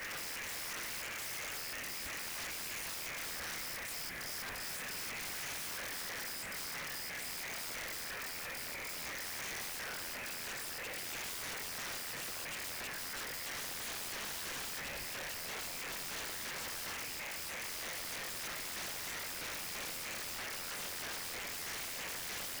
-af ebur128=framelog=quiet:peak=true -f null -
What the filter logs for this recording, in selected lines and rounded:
Integrated loudness:
  I:         -39.6 LUFS
  Threshold: -49.6 LUFS
Loudness range:
  LRA:         0.5 LU
  Threshold: -59.6 LUFS
  LRA low:   -39.9 LUFS
  LRA high:  -39.4 LUFS
True peak:
  Peak:      -32.4 dBFS